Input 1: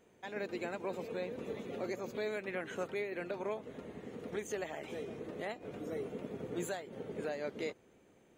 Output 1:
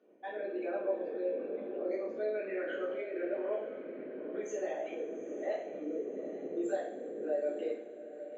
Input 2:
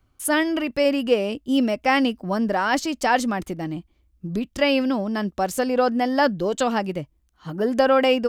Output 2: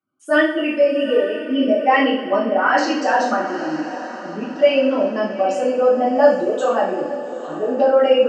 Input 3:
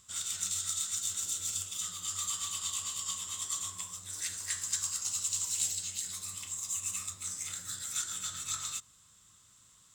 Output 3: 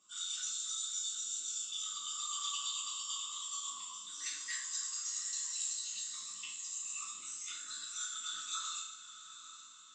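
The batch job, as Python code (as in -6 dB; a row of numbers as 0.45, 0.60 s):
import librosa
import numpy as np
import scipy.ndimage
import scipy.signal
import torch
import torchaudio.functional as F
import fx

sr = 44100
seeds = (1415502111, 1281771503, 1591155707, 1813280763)

y = fx.envelope_sharpen(x, sr, power=2.0)
y = np.clip(y, -10.0 ** (-9.5 / 20.0), 10.0 ** (-9.5 / 20.0))
y = fx.cabinet(y, sr, low_hz=280.0, low_slope=24, high_hz=5100.0, hz=(420.0, 890.0, 2000.0, 3800.0), db=(-10, -8, -7, -5))
y = fx.echo_diffused(y, sr, ms=852, feedback_pct=44, wet_db=-12.5)
y = fx.rev_double_slope(y, sr, seeds[0], early_s=0.53, late_s=3.7, knee_db=-20, drr_db=-8.0)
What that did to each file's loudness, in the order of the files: +3.5, +4.0, -4.0 LU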